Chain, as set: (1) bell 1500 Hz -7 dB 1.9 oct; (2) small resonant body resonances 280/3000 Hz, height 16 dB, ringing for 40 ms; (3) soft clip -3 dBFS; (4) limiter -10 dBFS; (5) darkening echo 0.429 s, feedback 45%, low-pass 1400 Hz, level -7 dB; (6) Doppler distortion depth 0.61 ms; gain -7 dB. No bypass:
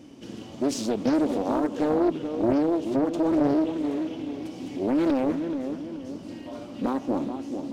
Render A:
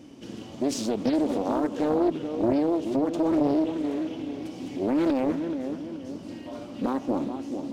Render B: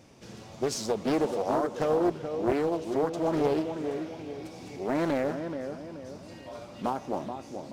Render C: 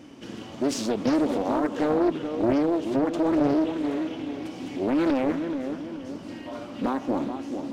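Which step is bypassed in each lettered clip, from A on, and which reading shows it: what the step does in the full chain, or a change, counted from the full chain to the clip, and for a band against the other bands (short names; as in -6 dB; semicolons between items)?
3, distortion -17 dB; 2, 250 Hz band -7.0 dB; 1, 2 kHz band +3.5 dB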